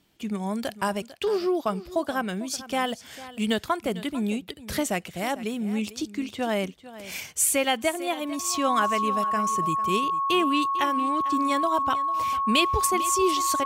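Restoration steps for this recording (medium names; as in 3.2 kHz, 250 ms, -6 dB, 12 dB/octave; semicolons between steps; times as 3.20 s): band-stop 1.1 kHz, Q 30; inverse comb 449 ms -16 dB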